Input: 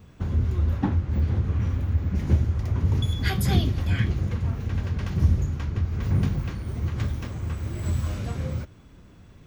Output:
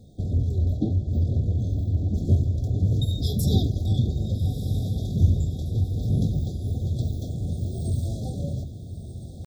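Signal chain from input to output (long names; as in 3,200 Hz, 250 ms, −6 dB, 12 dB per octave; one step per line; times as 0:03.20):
brick-wall band-stop 720–3,000 Hz
pitch shifter +1.5 semitones
feedback delay with all-pass diffusion 1,304 ms, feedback 50%, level −11 dB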